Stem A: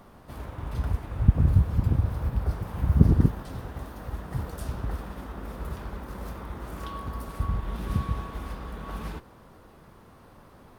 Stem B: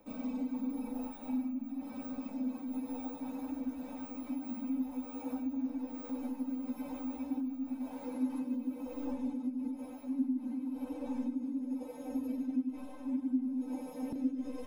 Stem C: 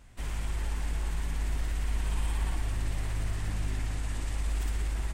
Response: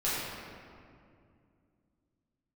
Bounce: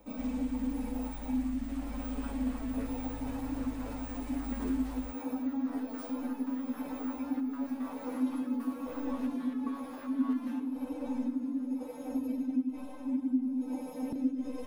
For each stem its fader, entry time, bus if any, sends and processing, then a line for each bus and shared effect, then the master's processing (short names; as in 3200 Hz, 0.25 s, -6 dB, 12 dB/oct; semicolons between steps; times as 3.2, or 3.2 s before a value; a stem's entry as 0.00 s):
0.0 dB, 1.40 s, send -19 dB, LFO high-pass saw down 6.4 Hz 370–2000 Hz; stepped resonator 7.5 Hz 89–430 Hz
+2.5 dB, 0.00 s, no send, dry
-12.0 dB, 0.00 s, no send, dry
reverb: on, RT60 2.3 s, pre-delay 5 ms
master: dry